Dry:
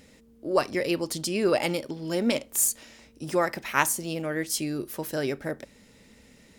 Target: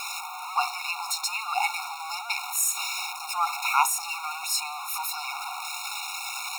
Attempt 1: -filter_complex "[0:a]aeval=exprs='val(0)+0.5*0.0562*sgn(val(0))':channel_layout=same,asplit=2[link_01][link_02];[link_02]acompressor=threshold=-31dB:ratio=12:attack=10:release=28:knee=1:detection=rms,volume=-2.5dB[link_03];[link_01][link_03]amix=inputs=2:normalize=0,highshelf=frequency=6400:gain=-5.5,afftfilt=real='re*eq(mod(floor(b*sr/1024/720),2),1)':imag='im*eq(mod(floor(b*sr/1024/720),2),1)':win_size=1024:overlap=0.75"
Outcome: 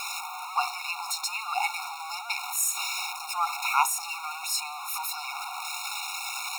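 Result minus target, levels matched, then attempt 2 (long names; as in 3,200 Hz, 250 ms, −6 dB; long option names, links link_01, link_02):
downward compressor: peak gain reduction +7 dB
-filter_complex "[0:a]aeval=exprs='val(0)+0.5*0.0562*sgn(val(0))':channel_layout=same,asplit=2[link_01][link_02];[link_02]acompressor=threshold=-23.5dB:ratio=12:attack=10:release=28:knee=1:detection=rms,volume=-2.5dB[link_03];[link_01][link_03]amix=inputs=2:normalize=0,highshelf=frequency=6400:gain=-5.5,afftfilt=real='re*eq(mod(floor(b*sr/1024/720),2),1)':imag='im*eq(mod(floor(b*sr/1024/720),2),1)':win_size=1024:overlap=0.75"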